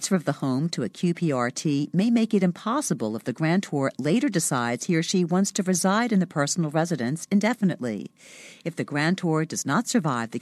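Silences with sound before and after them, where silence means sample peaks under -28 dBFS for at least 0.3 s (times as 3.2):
8.06–8.66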